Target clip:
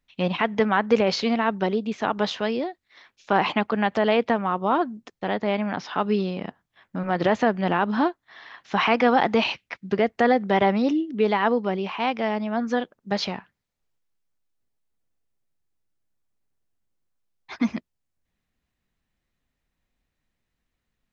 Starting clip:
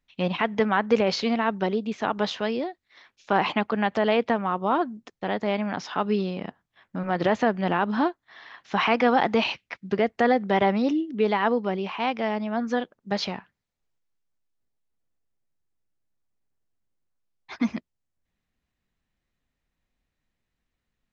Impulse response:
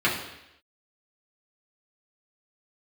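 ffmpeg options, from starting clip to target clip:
-filter_complex "[0:a]asettb=1/sr,asplit=3[s0][s1][s2];[s0]atrim=end=5.364[s3];[s1]atrim=start=5.36:end=5.94,asetpts=PTS-STARTPTS,afade=t=in:d=0.004:c=qsin,afade=t=out:st=0.576:d=0.004:c=qsin,lowpass=5000[s4];[s2]atrim=start=5.936[s5];[s3][s4]acrossfade=d=0.004:c1=hsin:c2=qsin[s6];[s6][s5]acrossfade=d=0.004:c1=qsin:c2=hsin,volume=1.19"

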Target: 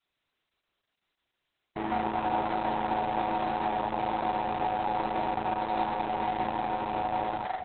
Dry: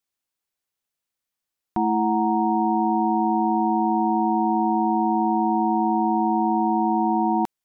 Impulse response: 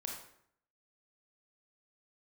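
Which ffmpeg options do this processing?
-filter_complex "[0:a]asettb=1/sr,asplit=3[s0][s1][s2];[s0]atrim=end=5.454[s3];[s1]atrim=start=5.45:end=6.25,asetpts=PTS-STARTPTS,afade=t=in:d=0.004:c=qsin,afade=t=out:st=0.796:d=0.004:c=qsin,highpass=f=40:w=0.5412,highpass=f=40:w=1.3066[s4];[s2]atrim=start=6.246[s5];[s3][s4]acrossfade=d=0.004:c1=hsin:c2=qsin[s6];[s6][s5]acrossfade=d=0.004:c1=qsin:c2=hsin,aecho=1:1:2.9:0.66,adynamicequalizer=threshold=0.0224:dfrequency=270:dqfactor=0.73:tfrequency=270:tqfactor=0.73:attack=5:release=100:ratio=0.375:range=2.5:mode=cutabove:tftype=bell,acontrast=25,alimiter=limit=0.141:level=0:latency=1:release=86,asoftclip=type=tanh:threshold=0.0422,aecho=1:1:150|270|366|442.8|504.2:0.631|0.398|0.251|0.158|0.1" -ar 48000 -c:a libopus -b:a 6k

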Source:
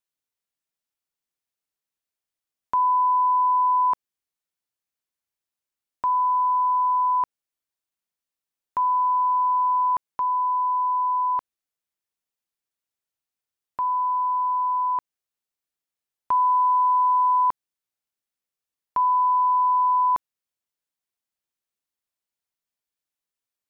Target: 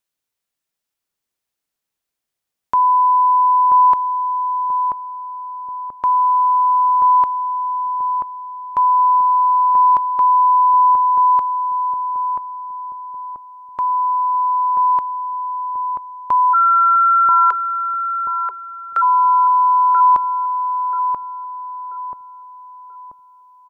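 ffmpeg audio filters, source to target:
-filter_complex "[0:a]asplit=3[s0][s1][s2];[s0]afade=t=out:st=16.53:d=0.02[s3];[s1]afreqshift=360,afade=t=in:st=16.53:d=0.02,afade=t=out:st=19.01:d=0.02[s4];[s2]afade=t=in:st=19.01:d=0.02[s5];[s3][s4][s5]amix=inputs=3:normalize=0,asplit=2[s6][s7];[s7]adelay=984,lowpass=f=860:p=1,volume=0.708,asplit=2[s8][s9];[s9]adelay=984,lowpass=f=860:p=1,volume=0.53,asplit=2[s10][s11];[s11]adelay=984,lowpass=f=860:p=1,volume=0.53,asplit=2[s12][s13];[s13]adelay=984,lowpass=f=860:p=1,volume=0.53,asplit=2[s14][s15];[s15]adelay=984,lowpass=f=860:p=1,volume=0.53,asplit=2[s16][s17];[s17]adelay=984,lowpass=f=860:p=1,volume=0.53,asplit=2[s18][s19];[s19]adelay=984,lowpass=f=860:p=1,volume=0.53[s20];[s6][s8][s10][s12][s14][s16][s18][s20]amix=inputs=8:normalize=0,volume=2.11"

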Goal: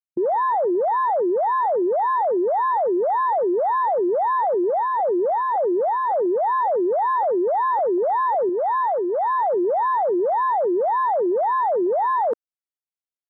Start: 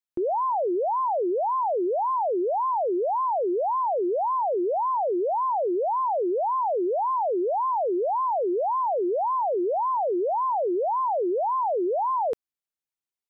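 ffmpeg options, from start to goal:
-filter_complex "[0:a]asplit=3[s0][s1][s2];[s0]afade=t=out:st=4.71:d=0.02[s3];[s1]lowpass=f=1100:w=0.5412,lowpass=f=1100:w=1.3066,afade=t=in:st=4.71:d=0.02,afade=t=out:st=6.38:d=0.02[s4];[s2]afade=t=in:st=6.38:d=0.02[s5];[s3][s4][s5]amix=inputs=3:normalize=0,afwtdn=0.0355,asettb=1/sr,asplit=3[s6][s7][s8];[s6]atrim=end=8.494[s9];[s7]atrim=start=8.49:end=9.39,asetpts=PTS-STARTPTS,afade=t=in:d=0.004:c=qsin,afade=t=out:st=0.896:d=0.004:c=qsin,equalizer=f=66:w=0.37:g=-12[s10];[s8]atrim=start=9.386[s11];[s9][s10]acrossfade=d=0.004:c1=hsin:c2=qsin[s12];[s12][s11]acrossfade=d=0.004:c1=qsin:c2=hsin,volume=1.68"

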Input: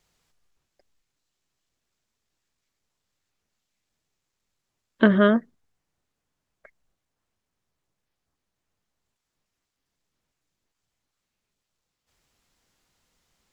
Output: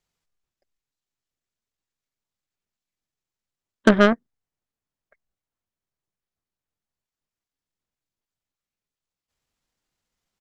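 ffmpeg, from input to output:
-af "atempo=1.3,aeval=exprs='0.631*(cos(1*acos(clip(val(0)/0.631,-1,1)))-cos(1*PI/2))+0.0708*(cos(7*acos(clip(val(0)/0.631,-1,1)))-cos(7*PI/2))':c=same,volume=1.5"

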